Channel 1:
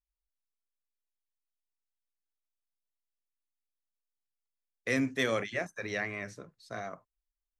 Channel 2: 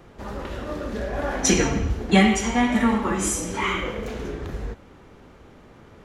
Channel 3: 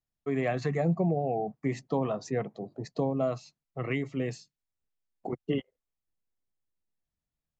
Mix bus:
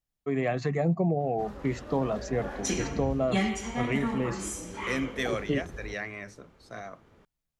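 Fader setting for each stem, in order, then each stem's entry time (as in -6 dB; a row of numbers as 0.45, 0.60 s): -1.5, -11.0, +1.0 dB; 0.00, 1.20, 0.00 s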